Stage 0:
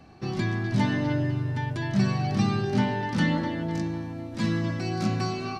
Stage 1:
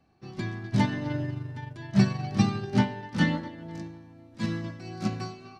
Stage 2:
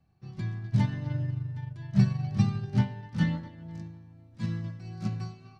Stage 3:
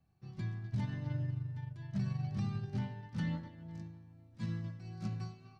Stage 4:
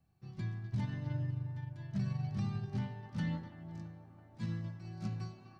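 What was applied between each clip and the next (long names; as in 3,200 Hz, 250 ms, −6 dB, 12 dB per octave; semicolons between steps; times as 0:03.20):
expander for the loud parts 2.5 to 1, over −32 dBFS; level +4.5 dB
low shelf with overshoot 200 Hz +9 dB, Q 1.5; level −8.5 dB
brickwall limiter −22 dBFS, peak gain reduction 10.5 dB; level −5.5 dB
delay with a band-pass on its return 332 ms, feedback 78%, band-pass 680 Hz, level −12 dB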